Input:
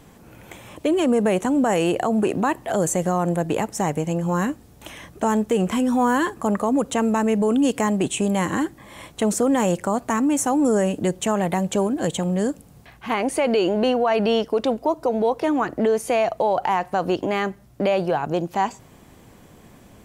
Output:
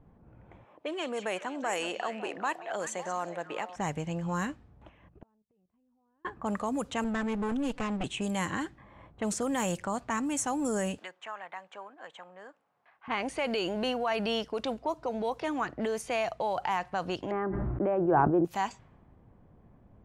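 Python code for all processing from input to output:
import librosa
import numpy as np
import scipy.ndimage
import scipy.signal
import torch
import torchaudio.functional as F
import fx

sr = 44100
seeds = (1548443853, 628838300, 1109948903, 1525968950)

y = fx.chain(x, sr, fx.highpass(hz=410.0, slope=12),
    fx.echo_stepped(ms=185, hz=4800.0, octaves=-1.4, feedback_pct=70, wet_db=-5.0), at=(0.64, 3.76))
y = fx.chain(y, sr, fx.peak_eq(hz=2700.0, db=9.5, octaves=0.39),
    fx.level_steps(step_db=11),
    fx.gate_flip(shuts_db=-25.0, range_db=-38), at=(4.89, 6.25))
y = fx.chain(y, sr, fx.lower_of_two(delay_ms=4.0),
    fx.lowpass(hz=1800.0, slope=6), at=(7.04, 8.04))
y = fx.chain(y, sr, fx.highpass(hz=1100.0, slope=12),
    fx.band_squash(depth_pct=40), at=(10.98, 13.08))
y = fx.chain(y, sr, fx.lowpass(hz=1400.0, slope=24),
    fx.peak_eq(hz=340.0, db=14.5, octaves=0.46),
    fx.sustainer(db_per_s=21.0), at=(17.31, 18.45))
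y = fx.env_lowpass(y, sr, base_hz=700.0, full_db=-15.5)
y = fx.peak_eq(y, sr, hz=370.0, db=-9.0, octaves=2.7)
y = y * librosa.db_to_amplitude(-4.0)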